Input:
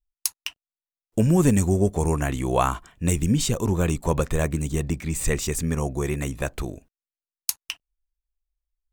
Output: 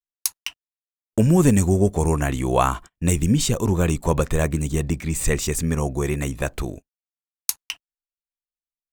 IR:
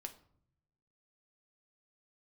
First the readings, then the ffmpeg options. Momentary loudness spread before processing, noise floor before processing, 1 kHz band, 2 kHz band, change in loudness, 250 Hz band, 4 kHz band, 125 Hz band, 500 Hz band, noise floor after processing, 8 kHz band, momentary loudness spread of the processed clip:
10 LU, below −85 dBFS, +2.5 dB, +2.5 dB, +2.5 dB, +2.5 dB, +2.0 dB, +2.5 dB, +2.5 dB, below −85 dBFS, +2.5 dB, 10 LU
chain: -af "agate=range=-31dB:threshold=-38dB:ratio=16:detection=peak,volume=2.5dB"

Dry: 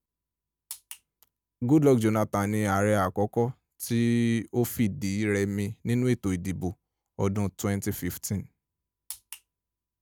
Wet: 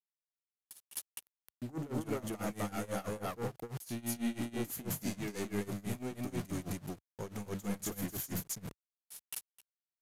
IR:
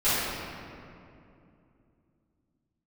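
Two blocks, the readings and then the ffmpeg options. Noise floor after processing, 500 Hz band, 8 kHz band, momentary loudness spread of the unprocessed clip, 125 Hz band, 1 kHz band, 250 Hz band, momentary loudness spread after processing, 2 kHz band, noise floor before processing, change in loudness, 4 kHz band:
below −85 dBFS, −13.5 dB, −4.5 dB, 17 LU, −13.5 dB, −12.0 dB, −12.5 dB, 9 LU, −11.5 dB, below −85 dBFS, −12.5 dB, −6.0 dB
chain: -filter_complex "[0:a]aeval=exprs='val(0)*gte(abs(val(0)),0.00944)':channel_layout=same,highshelf=frequency=6300:gain=6.5,areverse,acompressor=threshold=-31dB:ratio=6,areverse,asoftclip=type=tanh:threshold=-36dB,asplit=2[link_01][link_02];[link_02]aecho=0:1:43.73|259.5:0.316|1[link_03];[link_01][link_03]amix=inputs=2:normalize=0,tremolo=f=6.1:d=0.91,aresample=32000,aresample=44100,equalizer=frequency=68:width=2.2:gain=-12,volume=3.5dB"

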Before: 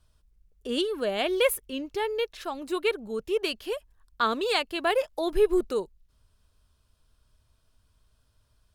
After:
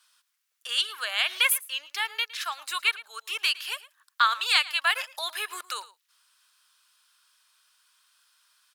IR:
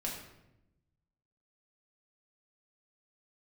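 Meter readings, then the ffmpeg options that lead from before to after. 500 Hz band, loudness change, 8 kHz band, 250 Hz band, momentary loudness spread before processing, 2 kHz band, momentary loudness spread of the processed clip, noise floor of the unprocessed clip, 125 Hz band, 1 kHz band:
−21.0 dB, +1.5 dB, +7.5 dB, below −30 dB, 10 LU, +7.0 dB, 13 LU, −69 dBFS, can't be measured, +1.5 dB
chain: -filter_complex "[0:a]highpass=frequency=1200:width=0.5412,highpass=frequency=1200:width=1.3066,asplit=2[link_01][link_02];[link_02]acompressor=threshold=-42dB:ratio=6,volume=0dB[link_03];[link_01][link_03]amix=inputs=2:normalize=0,asplit=2[link_04][link_05];[link_05]adelay=110.8,volume=-18dB,highshelf=frequency=4000:gain=-2.49[link_06];[link_04][link_06]amix=inputs=2:normalize=0,volume=5.5dB"

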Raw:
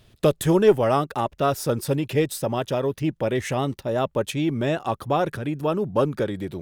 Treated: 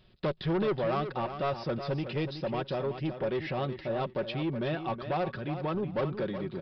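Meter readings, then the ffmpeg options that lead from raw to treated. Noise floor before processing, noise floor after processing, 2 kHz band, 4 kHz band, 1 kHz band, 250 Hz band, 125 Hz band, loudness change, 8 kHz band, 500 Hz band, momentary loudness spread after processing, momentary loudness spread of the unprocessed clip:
−60 dBFS, −51 dBFS, −6.5 dB, −7.0 dB, −8.0 dB, −8.5 dB, −7.5 dB, −9.0 dB, below −30 dB, −9.5 dB, 4 LU, 8 LU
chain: -af "aecho=1:1:5.4:0.46,aresample=11025,asoftclip=type=tanh:threshold=-18.5dB,aresample=44100,aecho=1:1:371|742|1113:0.335|0.0636|0.0121,volume=-6.5dB"

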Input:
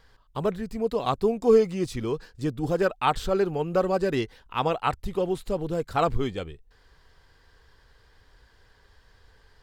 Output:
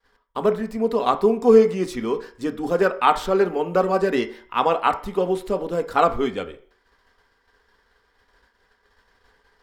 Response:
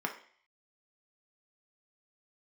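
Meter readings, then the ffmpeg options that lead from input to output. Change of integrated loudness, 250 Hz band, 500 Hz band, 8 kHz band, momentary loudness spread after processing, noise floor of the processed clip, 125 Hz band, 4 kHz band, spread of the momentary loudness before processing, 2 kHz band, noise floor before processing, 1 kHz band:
+5.0 dB, +4.5 dB, +5.0 dB, can't be measured, 11 LU, −66 dBFS, −2.5 dB, +3.0 dB, 10 LU, +6.0 dB, −60 dBFS, +6.5 dB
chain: -filter_complex "[0:a]agate=range=-33dB:threshold=-50dB:ratio=3:detection=peak,asplit=2[link_01][link_02];[1:a]atrim=start_sample=2205[link_03];[link_02][link_03]afir=irnorm=-1:irlink=0,volume=-2dB[link_04];[link_01][link_04]amix=inputs=2:normalize=0,volume=-1dB"

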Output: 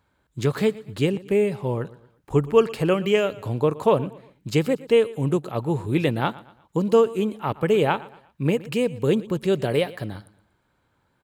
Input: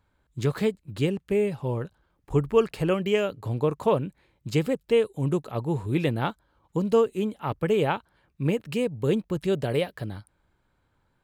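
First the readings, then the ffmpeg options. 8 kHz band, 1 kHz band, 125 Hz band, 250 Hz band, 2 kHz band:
can't be measured, +4.0 dB, +2.0 dB, +3.0 dB, +4.0 dB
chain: -af "highpass=frequency=110:poles=1,aecho=1:1:118|236|354:0.106|0.0413|0.0161,volume=4dB"

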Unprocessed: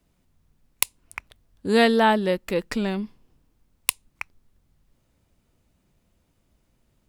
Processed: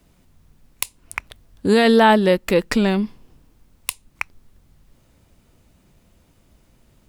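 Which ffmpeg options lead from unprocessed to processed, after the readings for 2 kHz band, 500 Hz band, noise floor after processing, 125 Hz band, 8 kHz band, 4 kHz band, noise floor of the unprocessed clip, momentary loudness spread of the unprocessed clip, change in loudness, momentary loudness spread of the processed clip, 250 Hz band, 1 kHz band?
+4.0 dB, +5.5 dB, −58 dBFS, +7.5 dB, −1.5 dB, +3.0 dB, −69 dBFS, 20 LU, +4.0 dB, 18 LU, +6.0 dB, +4.5 dB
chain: -filter_complex "[0:a]asplit=2[link_01][link_02];[link_02]acompressor=threshold=-32dB:ratio=6,volume=-3dB[link_03];[link_01][link_03]amix=inputs=2:normalize=0,alimiter=limit=-10.5dB:level=0:latency=1:release=18,volume=6dB"

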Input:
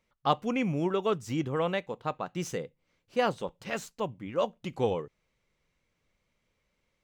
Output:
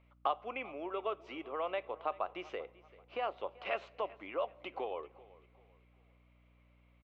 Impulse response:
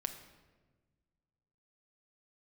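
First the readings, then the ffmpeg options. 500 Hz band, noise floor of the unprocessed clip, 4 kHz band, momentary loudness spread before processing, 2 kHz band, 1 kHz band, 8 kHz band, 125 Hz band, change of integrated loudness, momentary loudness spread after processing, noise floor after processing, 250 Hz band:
−8.0 dB, −78 dBFS, −9.0 dB, 8 LU, −6.0 dB, −5.0 dB, below −25 dB, below −25 dB, −8.0 dB, 8 LU, −66 dBFS, −16.5 dB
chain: -filter_complex "[0:a]equalizer=frequency=1800:width_type=o:width=0.51:gain=-10,acompressor=threshold=-38dB:ratio=6,highpass=frequency=480:width=0.5412,highpass=frequency=480:width=1.3066,equalizer=frequency=490:width_type=q:width=4:gain=-9,equalizer=frequency=880:width_type=q:width=4:gain=-7,equalizer=frequency=1500:width_type=q:width=4:gain=-5,lowpass=frequency=2500:width=0.5412,lowpass=frequency=2500:width=1.3066,aecho=1:1:388|776|1164:0.0891|0.0321|0.0116,asplit=2[link_01][link_02];[1:a]atrim=start_sample=2205[link_03];[link_02][link_03]afir=irnorm=-1:irlink=0,volume=-12dB[link_04];[link_01][link_04]amix=inputs=2:normalize=0,aeval=exprs='val(0)+0.000178*(sin(2*PI*60*n/s)+sin(2*PI*2*60*n/s)/2+sin(2*PI*3*60*n/s)/3+sin(2*PI*4*60*n/s)/4+sin(2*PI*5*60*n/s)/5)':channel_layout=same,volume=10dB"

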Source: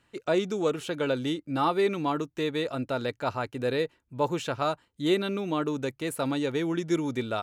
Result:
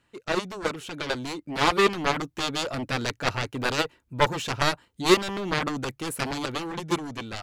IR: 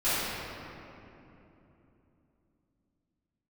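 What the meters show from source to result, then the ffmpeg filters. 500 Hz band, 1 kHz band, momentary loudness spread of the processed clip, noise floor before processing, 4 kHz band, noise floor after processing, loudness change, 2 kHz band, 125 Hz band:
−0.5 dB, +4.0 dB, 10 LU, −72 dBFS, +7.5 dB, −70 dBFS, +2.0 dB, +7.5 dB, +1.5 dB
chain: -af "aeval=exprs='0.237*(cos(1*acos(clip(val(0)/0.237,-1,1)))-cos(1*PI/2))+0.0237*(cos(3*acos(clip(val(0)/0.237,-1,1)))-cos(3*PI/2))+0.0531*(cos(7*acos(clip(val(0)/0.237,-1,1)))-cos(7*PI/2))':channel_layout=same,dynaudnorm=framelen=420:gausssize=7:maxgain=7dB"

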